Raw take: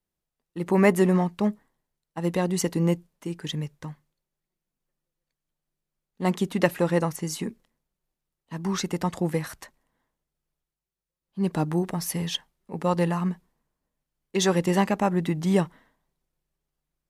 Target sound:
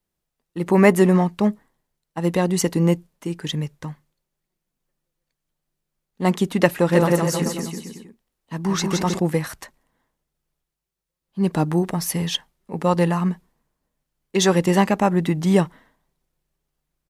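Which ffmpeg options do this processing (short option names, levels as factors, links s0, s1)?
-filter_complex "[0:a]asplit=3[s0][s1][s2];[s0]afade=t=out:st=6.91:d=0.02[s3];[s1]aecho=1:1:170|314.5|437.3|541.7|630.5:0.631|0.398|0.251|0.158|0.1,afade=t=in:st=6.91:d=0.02,afade=t=out:st=9.18:d=0.02[s4];[s2]afade=t=in:st=9.18:d=0.02[s5];[s3][s4][s5]amix=inputs=3:normalize=0,volume=1.78"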